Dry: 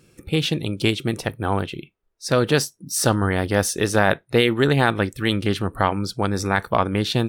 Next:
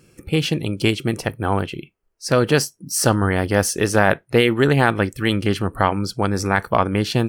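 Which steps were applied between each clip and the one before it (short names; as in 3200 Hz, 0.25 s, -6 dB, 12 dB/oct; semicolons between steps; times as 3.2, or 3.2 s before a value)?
notch 3700 Hz, Q 5.8; gain +2 dB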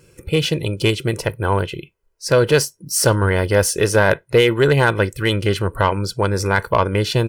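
comb 2 ms, depth 58%; soft clip -5 dBFS, distortion -21 dB; gain +1.5 dB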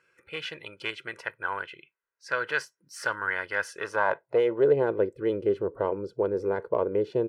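band-pass sweep 1600 Hz -> 430 Hz, 3.65–4.77; gain -2.5 dB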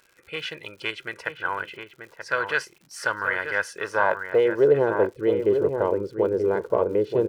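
crackle 140/s -46 dBFS; outdoor echo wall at 160 m, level -6 dB; gain +3.5 dB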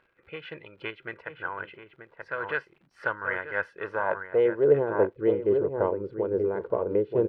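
tremolo 3.6 Hz, depth 49%; air absorption 490 m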